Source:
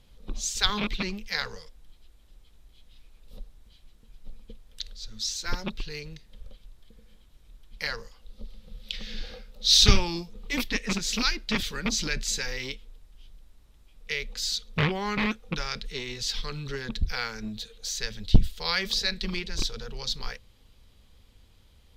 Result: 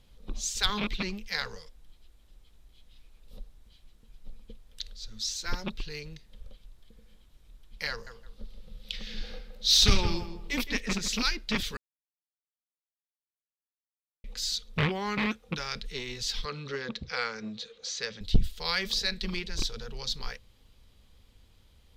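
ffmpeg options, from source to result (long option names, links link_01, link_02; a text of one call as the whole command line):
ffmpeg -i in.wav -filter_complex "[0:a]asettb=1/sr,asplit=3[link_01][link_02][link_03];[link_01]atrim=end=7.904[link_04];[link_02]atrim=start=7.9:end=11.08,asetpts=PTS-STARTPTS,afade=type=in:duration=0.004:curve=qsin,afade=type=out:start_time=3.176:duration=0.004:curve=qsin,asplit=2[link_05][link_06];[link_06]adelay=166,lowpass=frequency=2000:poles=1,volume=-9dB,asplit=2[link_07][link_08];[link_08]adelay=166,lowpass=frequency=2000:poles=1,volume=0.28,asplit=2[link_09][link_10];[link_10]adelay=166,lowpass=frequency=2000:poles=1,volume=0.28[link_11];[link_05][link_07][link_09][link_11]amix=inputs=4:normalize=0,atrim=end_sample=140238[link_12];[link_03]atrim=start=11.076[link_13];[link_04][link_12]acrossfade=duration=0.004:curve1=hsin:curve2=qsin[link_14];[link_14][link_13]acrossfade=duration=0.004:curve1=qsin:curve2=hsin,asettb=1/sr,asplit=3[link_15][link_16][link_17];[link_15]atrim=end=14.864[link_18];[link_16]atrim=start=14.86:end=15.72,asetpts=PTS-STARTPTS,afade=type=in:duration=0.004:curve=qsin,afade=type=out:start_time=0.856:duration=0.004:curve=qsin,highpass=51[link_19];[link_17]atrim=start=15.716[link_20];[link_18][link_19]acrossfade=duration=0.004:curve1=hsin:curve2=qsin[link_21];[link_21][link_20]acrossfade=duration=0.004:curve1=qsin:curve2=hsin,asettb=1/sr,asplit=3[link_22][link_23][link_24];[link_22]atrim=end=16.454[link_25];[link_23]atrim=start=16.45:end=18.21,asetpts=PTS-STARTPTS,afade=type=in:duration=0.004:curve=qsin,afade=type=out:start_time=1.756:duration=0.004:curve=qsin,highpass=150,equalizer=frequency=510:width_type=q:width=4:gain=8,equalizer=frequency=1200:width_type=q:width=4:gain=6,equalizer=frequency=2100:width_type=q:width=4:gain=3,lowpass=frequency=6500:width=0.5412,lowpass=frequency=6500:width=1.3066[link_26];[link_24]atrim=start=18.206[link_27];[link_25][link_26]acrossfade=duration=0.004:curve1=hsin:curve2=qsin[link_28];[link_28][link_27]acrossfade=duration=0.004:curve1=qsin:curve2=hsin,asplit=3[link_29][link_30][link_31];[link_29]atrim=end=11.77,asetpts=PTS-STARTPTS,afade=type=out:start_time=11.766:duration=0.004:curve=hsin[link_32];[link_30]atrim=start=11.77:end=14.24,asetpts=PTS-STARTPTS,volume=0[link_33];[link_31]atrim=start=14.24,asetpts=PTS-STARTPTS,afade=type=in:duration=0.004:curve=hsin[link_34];[link_32][link_33][link_34]concat=n=3:v=0:a=1,acontrast=66,volume=-8.5dB" out.wav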